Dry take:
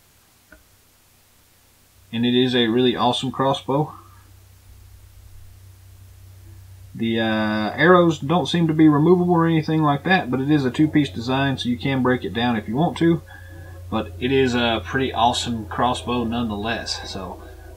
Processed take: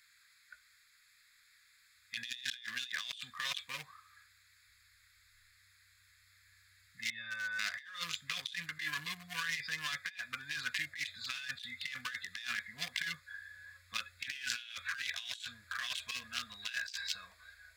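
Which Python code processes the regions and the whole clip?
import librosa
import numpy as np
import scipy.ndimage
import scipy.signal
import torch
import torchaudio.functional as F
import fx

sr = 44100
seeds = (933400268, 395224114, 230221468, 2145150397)

y = fx.chain(x, sr, fx.lowpass(hz=4800.0, slope=12),
    fx.stiff_resonator(f0_hz=110.0, decay_s=0.24, stiffness=0.03), at=(7.1, 7.59))
y = fx.wiener(y, sr, points=15)
y = scipy.signal.sosfilt(scipy.signal.cheby2(4, 40, 930.0, 'highpass', fs=sr, output='sos'), y)
y = fx.over_compress(y, sr, threshold_db=-43.0, ratio=-1.0)
y = F.gain(torch.from_numpy(y), 1.0).numpy()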